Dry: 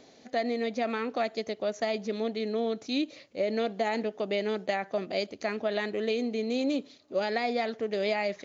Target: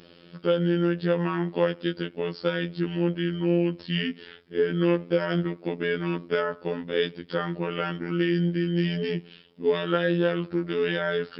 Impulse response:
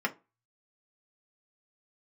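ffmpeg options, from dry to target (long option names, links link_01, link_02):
-af "asetrate=32667,aresample=44100,afftfilt=real='hypot(re,im)*cos(PI*b)':imag='0':win_size=2048:overlap=0.75,volume=7.5dB"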